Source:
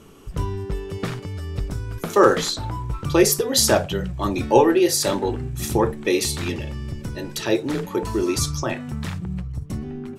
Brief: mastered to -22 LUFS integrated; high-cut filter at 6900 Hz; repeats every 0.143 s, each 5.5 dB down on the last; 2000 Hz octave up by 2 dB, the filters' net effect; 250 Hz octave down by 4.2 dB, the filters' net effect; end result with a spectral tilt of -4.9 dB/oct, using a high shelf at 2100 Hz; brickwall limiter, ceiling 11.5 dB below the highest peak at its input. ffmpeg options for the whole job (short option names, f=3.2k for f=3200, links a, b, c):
-af "lowpass=6.9k,equalizer=f=250:t=o:g=-7,equalizer=f=2k:t=o:g=6.5,highshelf=f=2.1k:g=-6.5,alimiter=limit=-14.5dB:level=0:latency=1,aecho=1:1:143|286|429|572|715|858|1001:0.531|0.281|0.149|0.079|0.0419|0.0222|0.0118,volume=4.5dB"